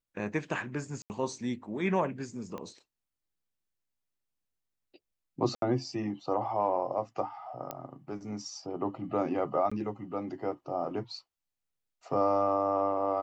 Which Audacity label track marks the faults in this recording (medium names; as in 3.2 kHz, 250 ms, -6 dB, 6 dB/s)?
1.020000	1.100000	dropout 79 ms
2.580000	2.580000	pop -27 dBFS
5.550000	5.620000	dropout 72 ms
7.710000	7.710000	pop -20 dBFS
9.700000	9.710000	dropout 15 ms